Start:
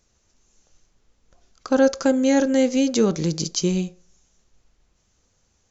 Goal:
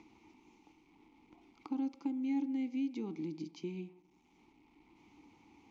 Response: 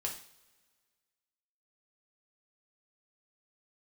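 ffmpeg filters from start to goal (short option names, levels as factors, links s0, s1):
-filter_complex "[0:a]lowpass=4900,acompressor=mode=upward:threshold=0.0708:ratio=2.5,acrusher=bits=7:mix=0:aa=0.5,asplit=3[s0][s1][s2];[s0]bandpass=f=300:t=q:w=8,volume=1[s3];[s1]bandpass=f=870:t=q:w=8,volume=0.501[s4];[s2]bandpass=f=2240:t=q:w=8,volume=0.355[s5];[s3][s4][s5]amix=inputs=3:normalize=0,acrossover=split=150|3000[s6][s7][s8];[s7]acompressor=threshold=0.00891:ratio=2[s9];[s6][s9][s8]amix=inputs=3:normalize=0,asplit=2[s10][s11];[1:a]atrim=start_sample=2205,lowpass=2600,adelay=113[s12];[s11][s12]afir=irnorm=-1:irlink=0,volume=0.106[s13];[s10][s13]amix=inputs=2:normalize=0,volume=0.841"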